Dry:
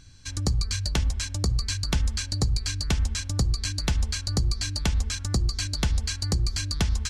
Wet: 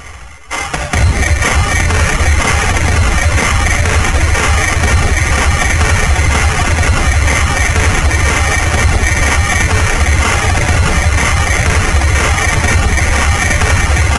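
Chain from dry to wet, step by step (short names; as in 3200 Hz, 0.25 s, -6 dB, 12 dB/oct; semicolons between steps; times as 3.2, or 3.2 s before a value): resonant low shelf 110 Hz -10.5 dB, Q 3; bouncing-ball echo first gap 0.27 s, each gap 0.6×, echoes 5; shoebox room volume 1700 m³, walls mixed, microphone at 4.4 m; sample-rate reducer 8300 Hz, jitter 0%; reverse; upward compressor, threshold -28 dBFS; reverse; reverb removal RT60 0.56 s; speed mistake 15 ips tape played at 7.5 ips; tone controls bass -5 dB, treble 0 dB; maximiser +16.5 dB; gain -1 dB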